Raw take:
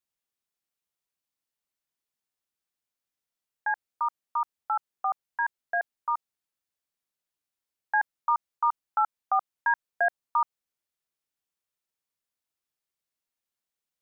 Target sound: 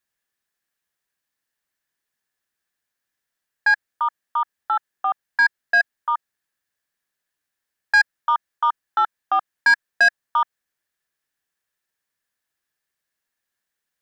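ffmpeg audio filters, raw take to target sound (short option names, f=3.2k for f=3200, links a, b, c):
-af "equalizer=f=1.7k:w=4.2:g=12.5,asoftclip=type=tanh:threshold=-15.5dB,volume=5.5dB"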